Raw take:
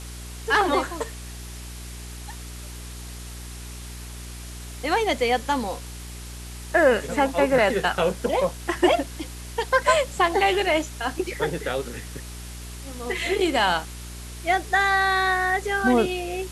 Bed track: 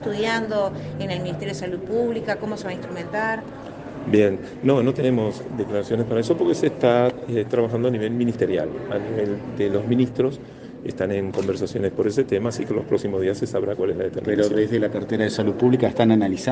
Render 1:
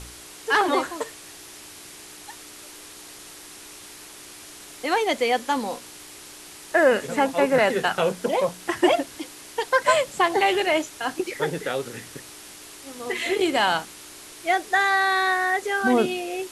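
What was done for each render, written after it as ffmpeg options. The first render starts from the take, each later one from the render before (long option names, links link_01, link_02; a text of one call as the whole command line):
ffmpeg -i in.wav -af "bandreject=frequency=60:width_type=h:width=4,bandreject=frequency=120:width_type=h:width=4,bandreject=frequency=180:width_type=h:width=4,bandreject=frequency=240:width_type=h:width=4" out.wav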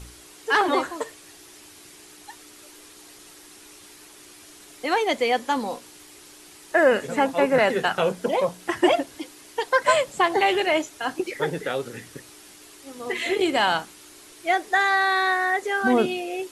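ffmpeg -i in.wav -af "afftdn=noise_reduction=6:noise_floor=-43" out.wav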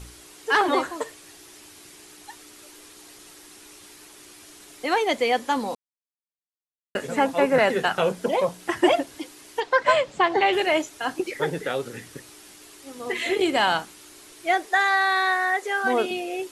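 ffmpeg -i in.wav -filter_complex "[0:a]asettb=1/sr,asplit=3[link_01][link_02][link_03];[link_01]atrim=end=9.604[link_04];[link_02]atrim=start=9.6:end=10.53,asetpts=PTS-STARTPTS,afade=type=in:duration=0.004:curve=qsin,afade=type=out:start_time=0.926:duration=0.004:curve=qsin,lowpass=4700[link_05];[link_03]atrim=start=10.526[link_06];[link_04][link_05]acrossfade=duration=0.004:curve1=hsin:curve2=qsin[link_07];[link_07][link_06]acrossfade=duration=0.004:curve1=qsin:curve2=hsin,asettb=1/sr,asplit=3[link_08][link_09][link_10];[link_08]atrim=end=14.664[link_11];[link_09]atrim=start=14.66:end=16.11,asetpts=PTS-STARTPTS,afade=type=in:duration=0.004:curve=qsin,afade=type=out:start_time=1.446:duration=0.004:curve=qsin,highpass=400[link_12];[link_10]atrim=start=16.106[link_13];[link_11][link_12]acrossfade=duration=0.004:curve1=hsin:curve2=qsin[link_14];[link_14][link_13]acrossfade=duration=0.004:curve1=qsin:curve2=hsin,asplit=3[link_15][link_16][link_17];[link_15]atrim=end=5.75,asetpts=PTS-STARTPTS,afade=type=out:start_time=5.746:duration=0.004:curve=hsin[link_18];[link_16]atrim=start=5.75:end=6.95,asetpts=PTS-STARTPTS,volume=0[link_19];[link_17]atrim=start=6.95,asetpts=PTS-STARTPTS,afade=type=in:duration=0.004:curve=hsin[link_20];[link_18][link_19][link_20]concat=n=3:v=0:a=1" out.wav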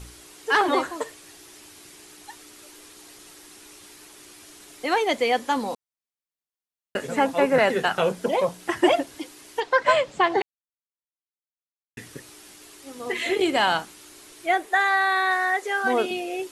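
ffmpeg -i in.wav -filter_complex "[0:a]asettb=1/sr,asplit=3[link_01][link_02][link_03];[link_01]atrim=end=14.464[link_04];[link_02]atrim=start=14.46:end=15.31,asetpts=PTS-STARTPTS,afade=type=in:duration=0.004:curve=qsin,afade=type=out:start_time=0.846:duration=0.004:curve=qsin,equalizer=frequency=5300:width=1.7:gain=-7[link_05];[link_03]atrim=start=15.306[link_06];[link_04][link_05]acrossfade=duration=0.004:curve1=hsin:curve2=qsin[link_07];[link_07][link_06]acrossfade=duration=0.004:curve1=qsin:curve2=hsin,asplit=3[link_08][link_09][link_10];[link_08]atrim=end=10.42,asetpts=PTS-STARTPTS,afade=type=out:start_time=10.416:duration=0.004:curve=hsin[link_11];[link_09]atrim=start=10.42:end=11.97,asetpts=PTS-STARTPTS,volume=0[link_12];[link_10]atrim=start=11.97,asetpts=PTS-STARTPTS,afade=type=in:duration=0.004:curve=hsin[link_13];[link_11][link_12][link_13]concat=n=3:v=0:a=1" out.wav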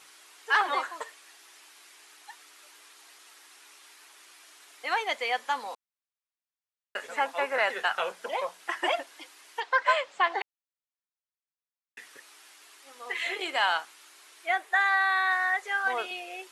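ffmpeg -i in.wav -af "highpass=1000,highshelf=frequency=3700:gain=-9.5" out.wav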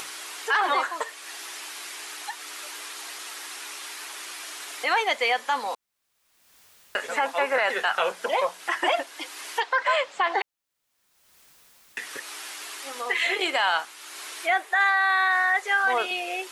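ffmpeg -i in.wav -filter_complex "[0:a]asplit=2[link_01][link_02];[link_02]acompressor=mode=upward:threshold=-30dB:ratio=2.5,volume=2.5dB[link_03];[link_01][link_03]amix=inputs=2:normalize=0,alimiter=limit=-13.5dB:level=0:latency=1:release=34" out.wav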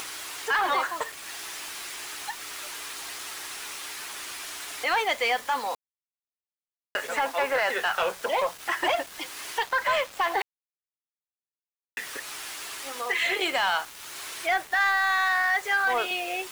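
ffmpeg -i in.wav -af "acrusher=bits=6:mix=0:aa=0.000001,asoftclip=type=tanh:threshold=-16.5dB" out.wav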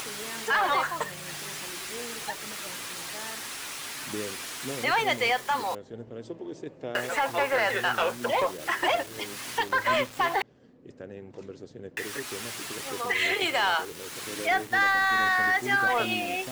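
ffmpeg -i in.wav -i bed.wav -filter_complex "[1:a]volume=-19dB[link_01];[0:a][link_01]amix=inputs=2:normalize=0" out.wav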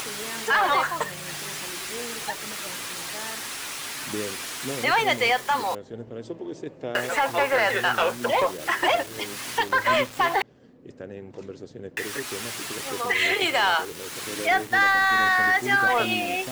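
ffmpeg -i in.wav -af "volume=3.5dB" out.wav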